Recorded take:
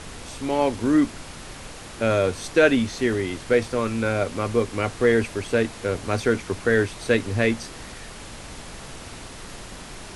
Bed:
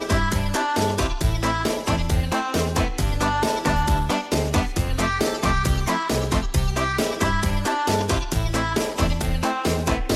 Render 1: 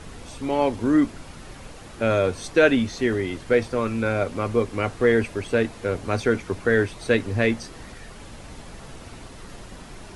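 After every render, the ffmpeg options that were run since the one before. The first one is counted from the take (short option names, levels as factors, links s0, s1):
-af "afftdn=nr=7:nf=-40"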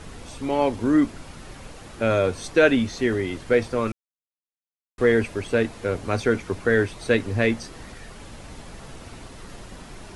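-filter_complex "[0:a]asplit=3[s0][s1][s2];[s0]atrim=end=3.92,asetpts=PTS-STARTPTS,afade=t=out:st=3.916:d=0.004:c=hsin[s3];[s1]atrim=start=3.92:end=4.98,asetpts=PTS-STARTPTS,volume=0[s4];[s2]atrim=start=4.98,asetpts=PTS-STARTPTS,afade=t=in:d=0.004:c=hsin[s5];[s3][s4][s5]concat=n=3:v=0:a=1"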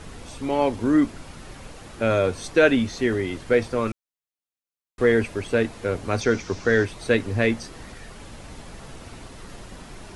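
-filter_complex "[0:a]asettb=1/sr,asplit=3[s0][s1][s2];[s0]atrim=end=6.214[s3];[s1]atrim=start=6.21:end=6.85,asetpts=PTS-STARTPTS,afade=t=in:d=0.004:c=qsin,afade=t=out:st=0.636:d=0.004:c=qsin,lowpass=f=5800:t=q:w=3.3[s4];[s2]atrim=start=6.846[s5];[s3][s4]acrossfade=d=0.004:c1=hsin:c2=qsin[s6];[s6][s5]acrossfade=d=0.004:c1=qsin:c2=hsin"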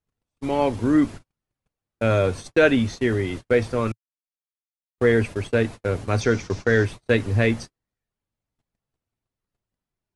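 -af "agate=range=0.00398:threshold=0.0251:ratio=16:detection=peak,equalizer=f=110:w=1.7:g=6"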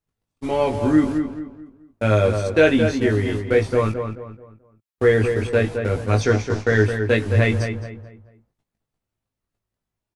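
-filter_complex "[0:a]asplit=2[s0][s1];[s1]adelay=19,volume=0.631[s2];[s0][s2]amix=inputs=2:normalize=0,asplit=2[s3][s4];[s4]adelay=216,lowpass=f=2100:p=1,volume=0.473,asplit=2[s5][s6];[s6]adelay=216,lowpass=f=2100:p=1,volume=0.36,asplit=2[s7][s8];[s8]adelay=216,lowpass=f=2100:p=1,volume=0.36,asplit=2[s9][s10];[s10]adelay=216,lowpass=f=2100:p=1,volume=0.36[s11];[s3][s5][s7][s9][s11]amix=inputs=5:normalize=0"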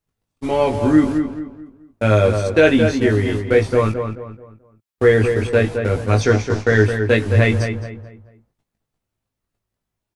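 -af "volume=1.41,alimiter=limit=0.794:level=0:latency=1"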